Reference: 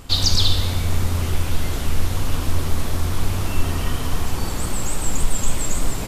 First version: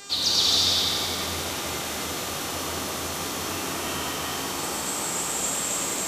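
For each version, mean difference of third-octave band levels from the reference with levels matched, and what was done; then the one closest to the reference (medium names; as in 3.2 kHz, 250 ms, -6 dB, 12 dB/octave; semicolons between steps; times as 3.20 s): 5.0 dB: high-pass 260 Hz 12 dB/octave; feedback echo behind a high-pass 89 ms, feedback 79%, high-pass 1.4 kHz, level -7 dB; mains buzz 400 Hz, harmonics 21, -38 dBFS 0 dB/octave; gated-style reverb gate 440 ms flat, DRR -5 dB; trim -6.5 dB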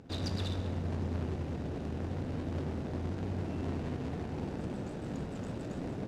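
9.0 dB: median filter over 41 samples; band-pass 140–6800 Hz; trim -4.5 dB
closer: first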